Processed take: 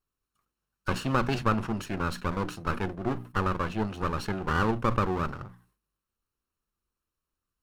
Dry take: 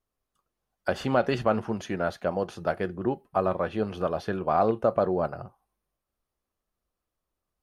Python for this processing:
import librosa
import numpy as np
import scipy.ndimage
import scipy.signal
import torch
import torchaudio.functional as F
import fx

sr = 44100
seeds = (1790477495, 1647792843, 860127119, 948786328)

y = fx.lower_of_two(x, sr, delay_ms=0.72)
y = fx.hum_notches(y, sr, base_hz=60, count=5)
y = fx.sustainer(y, sr, db_per_s=130.0)
y = y * 10.0 ** (-1.0 / 20.0)